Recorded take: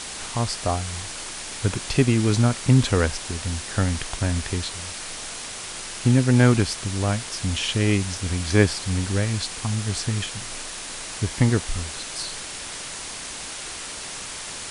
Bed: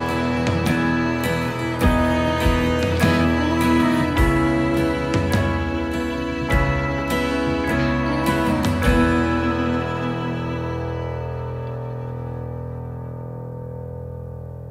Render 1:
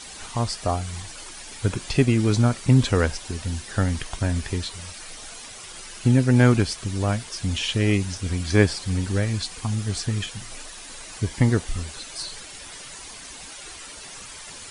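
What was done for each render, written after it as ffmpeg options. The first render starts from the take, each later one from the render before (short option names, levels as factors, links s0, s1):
-af "afftdn=nr=10:nf=-35"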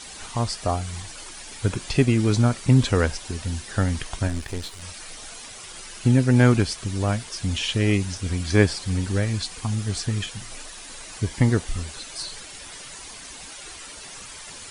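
-filter_complex "[0:a]asplit=3[s0][s1][s2];[s0]afade=t=out:st=4.27:d=0.02[s3];[s1]aeval=exprs='if(lt(val(0),0),0.251*val(0),val(0))':c=same,afade=t=in:st=4.27:d=0.02,afade=t=out:st=4.81:d=0.02[s4];[s2]afade=t=in:st=4.81:d=0.02[s5];[s3][s4][s5]amix=inputs=3:normalize=0"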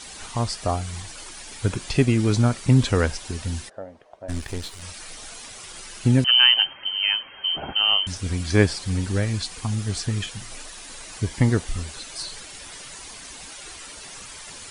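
-filter_complex "[0:a]asplit=3[s0][s1][s2];[s0]afade=t=out:st=3.68:d=0.02[s3];[s1]bandpass=f=600:t=q:w=4.6,afade=t=in:st=3.68:d=0.02,afade=t=out:st=4.28:d=0.02[s4];[s2]afade=t=in:st=4.28:d=0.02[s5];[s3][s4][s5]amix=inputs=3:normalize=0,asettb=1/sr,asplit=3[s6][s7][s8];[s6]atrim=end=6.244[s9];[s7]atrim=start=6.24:end=8.07,asetpts=PTS-STARTPTS,afade=t=in:d=0.004:c=qsin,afade=t=out:st=1.826:d=0.004:c=qsin,lowpass=f=2700:t=q:w=0.5098,lowpass=f=2700:t=q:w=0.6013,lowpass=f=2700:t=q:w=0.9,lowpass=f=2700:t=q:w=2.563,afreqshift=-3200[s10];[s8]atrim=start=8.066[s11];[s9][s10]acrossfade=d=0.004:c1=hsin:c2=qsin[s12];[s12][s11]acrossfade=d=0.004:c1=qsin:c2=hsin"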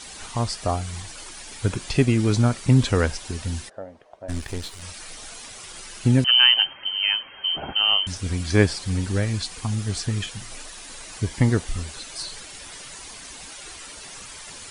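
-af anull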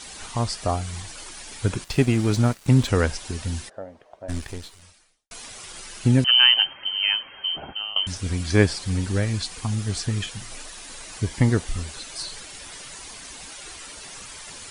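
-filter_complex "[0:a]asettb=1/sr,asplit=3[s0][s1][s2];[s0]atrim=end=1.844[s3];[s1]atrim=start=1.84:end=2.88,asetpts=PTS-STARTPTS,afade=t=in:d=0.004:c=qsin,afade=t=out:st=1.036:d=0.004:c=qsin,aeval=exprs='sgn(val(0))*max(abs(val(0))-0.0158,0)':c=same[s4];[s2]atrim=start=2.876[s5];[s3][s4]acrossfade=d=0.004:c1=hsin:c2=qsin[s6];[s6][s5]acrossfade=d=0.004:c1=qsin:c2=hsin,asplit=3[s7][s8][s9];[s7]atrim=end=5.31,asetpts=PTS-STARTPTS,afade=t=out:st=4.35:d=0.96:c=qua[s10];[s8]atrim=start=5.31:end=7.96,asetpts=PTS-STARTPTS,afade=t=in:d=0.004:c=hsin,afade=t=out:st=2.04:d=0.61:silence=0.112202[s11];[s9]atrim=start=7.96,asetpts=PTS-STARTPTS,afade=t=in:d=0.004:c=hsin:silence=0.112202[s12];[s10][s11][s12]concat=n=3:v=0:a=1"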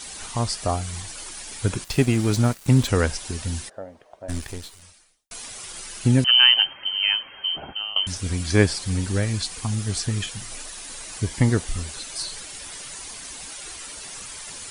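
-af "highshelf=f=8400:g=8.5"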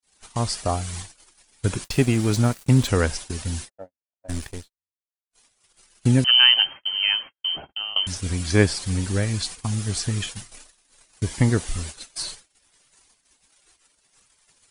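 -af "agate=range=0.00141:threshold=0.0224:ratio=16:detection=peak"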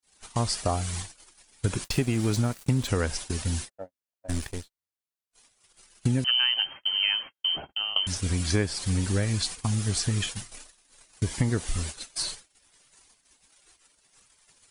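-af "acompressor=threshold=0.0891:ratio=6"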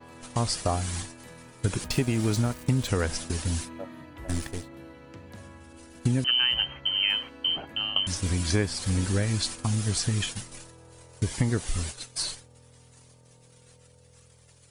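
-filter_complex "[1:a]volume=0.0501[s0];[0:a][s0]amix=inputs=2:normalize=0"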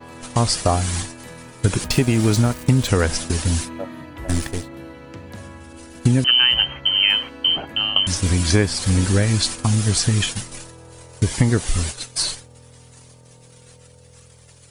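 -af "volume=2.66,alimiter=limit=0.708:level=0:latency=1"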